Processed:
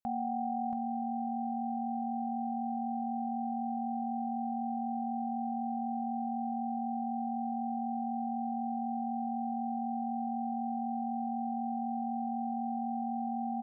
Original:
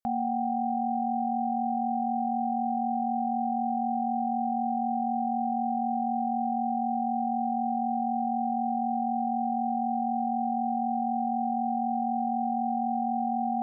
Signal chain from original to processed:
single-tap delay 679 ms −5 dB
level −5.5 dB

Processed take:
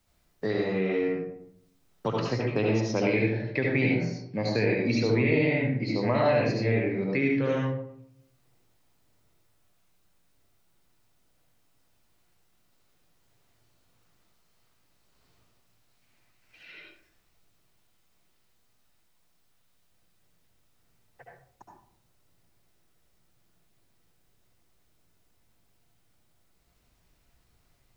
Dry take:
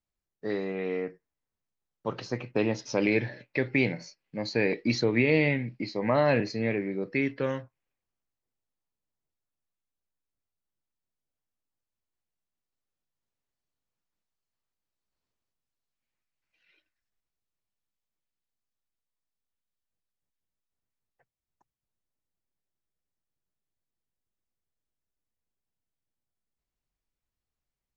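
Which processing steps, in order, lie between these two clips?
parametric band 110 Hz +7 dB 0.3 octaves
convolution reverb RT60 0.60 s, pre-delay 65 ms, DRR −3 dB
multiband upward and downward compressor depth 70%
level −3.5 dB

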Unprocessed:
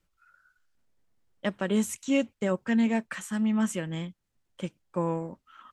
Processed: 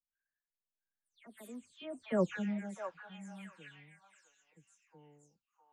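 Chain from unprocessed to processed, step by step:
every frequency bin delayed by itself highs early, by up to 262 ms
source passing by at 0:02.22, 42 m/s, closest 3 metres
parametric band 5,000 Hz −4.5 dB 0.43 octaves
on a send: echo through a band-pass that steps 660 ms, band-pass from 1,000 Hz, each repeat 1.4 octaves, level −2 dB
on the sum: level −1 dB

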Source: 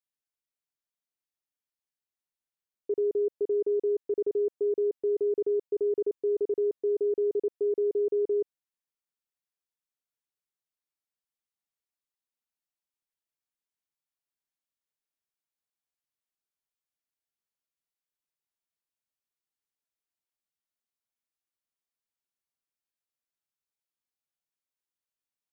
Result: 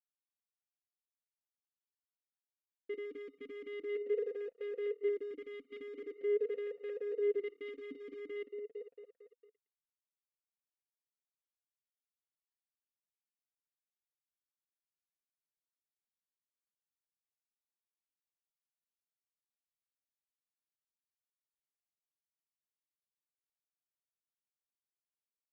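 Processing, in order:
feedback delay that plays each chunk backwards 113 ms, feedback 78%, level −12 dB
reverb reduction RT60 1.1 s
dead-zone distortion −53 dBFS
tube saturation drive 37 dB, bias 0.3
comb filter 4.3 ms, depth 85%
formant filter swept between two vowels e-i 0.44 Hz
level +7 dB

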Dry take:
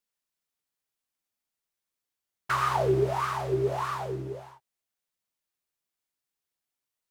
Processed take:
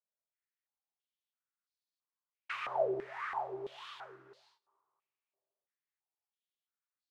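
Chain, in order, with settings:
coupled-rooms reverb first 0.21 s, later 2.7 s, from −22 dB, DRR 18.5 dB
band-pass on a step sequencer 3 Hz 610–4,300 Hz

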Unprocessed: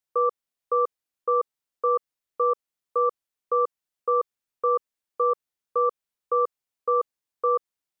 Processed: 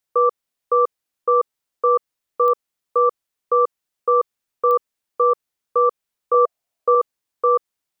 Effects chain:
0:06.34–0:06.95: parametric band 660 Hz +12 dB 0.38 octaves
digital clicks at 0:02.48/0:04.71, −21 dBFS
level +6 dB

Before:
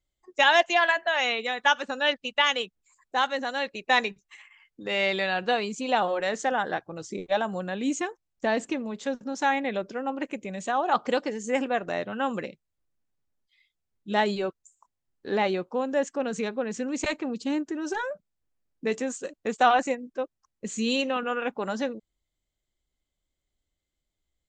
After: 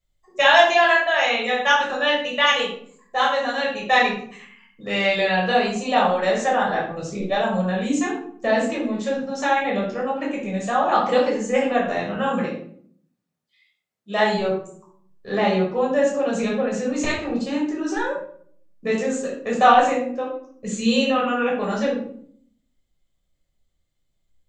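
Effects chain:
0:12.27–0:14.32: high-pass filter 110 Hz → 310 Hz 12 dB per octave
rectangular room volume 780 cubic metres, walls furnished, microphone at 6 metres
level −2 dB

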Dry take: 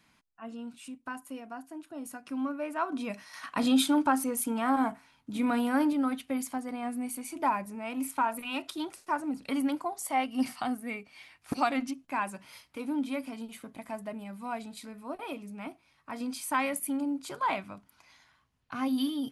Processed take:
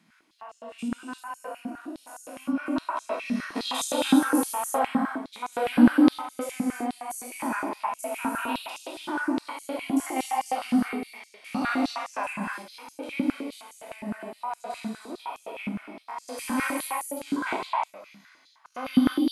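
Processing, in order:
spectrum averaged block by block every 100 ms
reverb whose tail is shaped and stops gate 370 ms flat, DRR −2 dB
high-pass on a step sequencer 9.7 Hz 200–6,600 Hz

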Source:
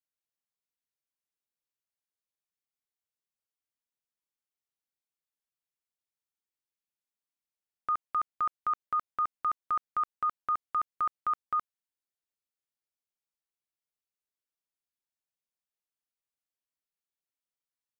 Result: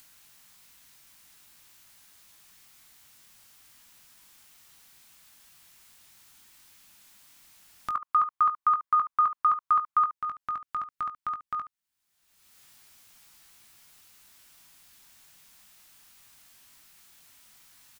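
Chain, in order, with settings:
0:07.95–0:10.13: parametric band 1,100 Hz +11.5 dB 0.78 octaves
upward compression, threshold −30 dBFS
parametric band 470 Hz −11 dB 1 octave
ambience of single reflections 20 ms −9 dB, 72 ms −15 dB

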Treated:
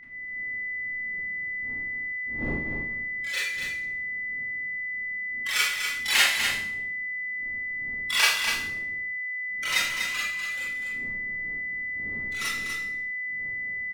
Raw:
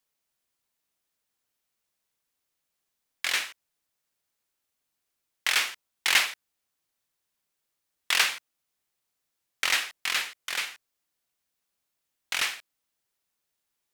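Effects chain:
spectral dynamics exaggerated over time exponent 3
wind on the microphone 260 Hz −56 dBFS
in parallel at −1.5 dB: output level in coarse steps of 20 dB
on the sum: steady tone 2,000 Hz −43 dBFS
on a send: single-tap delay 245 ms −6.5 dB
on the sum: four-comb reverb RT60 0.57 s, combs from 27 ms, DRR −7.5 dB
level −2 dB

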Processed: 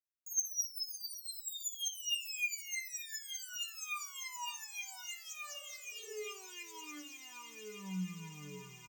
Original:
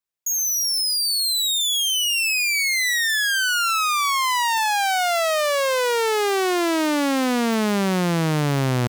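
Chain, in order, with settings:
EQ curve with evenly spaced ripples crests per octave 0.74, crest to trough 15 dB
reverb reduction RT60 0.84 s
stiff-string resonator 88 Hz, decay 0.83 s, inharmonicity 0.03
on a send: multi-tap delay 61/564 ms −14/−16 dB
on the sum: healed spectral selection 0:05.57–0:06.10, 230–1,500 Hz both
guitar amp tone stack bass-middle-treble 6-0-2
level +7.5 dB

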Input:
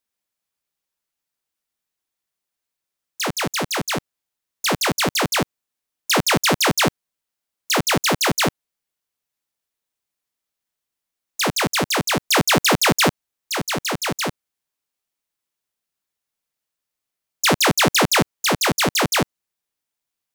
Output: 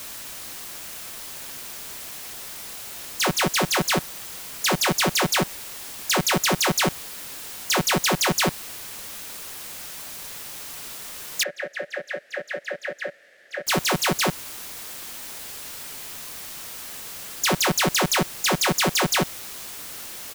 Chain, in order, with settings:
comb filter 5.4 ms
brickwall limiter −13.5 dBFS, peak gain reduction 7.5 dB
background noise white −37 dBFS
0:11.43–0:13.67: pair of resonant band-passes 1,000 Hz, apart 1.6 octaves

